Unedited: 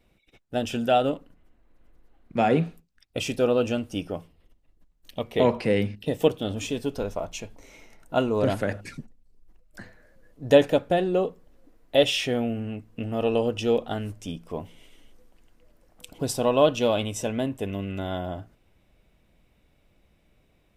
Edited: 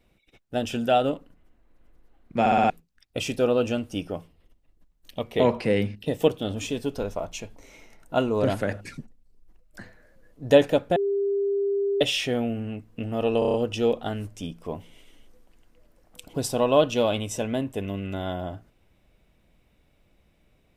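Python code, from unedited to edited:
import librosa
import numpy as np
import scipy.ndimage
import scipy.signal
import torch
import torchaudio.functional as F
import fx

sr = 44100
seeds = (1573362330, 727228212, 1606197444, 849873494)

y = fx.edit(x, sr, fx.stutter_over(start_s=2.4, slice_s=0.06, count=5),
    fx.bleep(start_s=10.96, length_s=1.05, hz=399.0, db=-21.5),
    fx.stutter(start_s=13.39, slice_s=0.03, count=6), tone=tone)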